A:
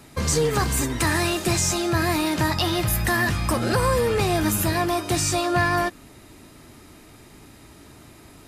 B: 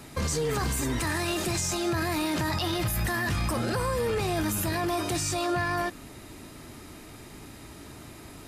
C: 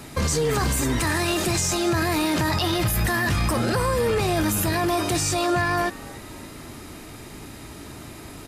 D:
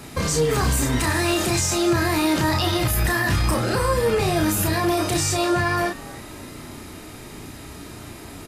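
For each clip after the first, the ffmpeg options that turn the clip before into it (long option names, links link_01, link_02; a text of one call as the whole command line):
ffmpeg -i in.wav -af "alimiter=limit=-22.5dB:level=0:latency=1:release=16,volume=2dB" out.wav
ffmpeg -i in.wav -filter_complex "[0:a]asplit=5[link_01][link_02][link_03][link_04][link_05];[link_02]adelay=285,afreqshift=110,volume=-22dB[link_06];[link_03]adelay=570,afreqshift=220,volume=-27.7dB[link_07];[link_04]adelay=855,afreqshift=330,volume=-33.4dB[link_08];[link_05]adelay=1140,afreqshift=440,volume=-39dB[link_09];[link_01][link_06][link_07][link_08][link_09]amix=inputs=5:normalize=0,volume=5.5dB" out.wav
ffmpeg -i in.wav -filter_complex "[0:a]asplit=2[link_01][link_02];[link_02]adelay=32,volume=-4dB[link_03];[link_01][link_03]amix=inputs=2:normalize=0" out.wav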